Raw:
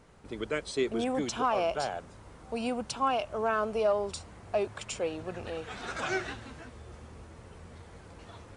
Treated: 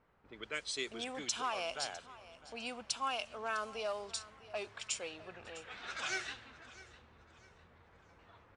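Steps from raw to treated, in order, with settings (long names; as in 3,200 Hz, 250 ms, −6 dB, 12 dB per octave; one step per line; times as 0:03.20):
tilt shelving filter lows −10 dB, about 1,300 Hz
low-pass that shuts in the quiet parts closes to 1,200 Hz, open at −26.5 dBFS
repeating echo 654 ms, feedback 35%, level −18 dB
level −6.5 dB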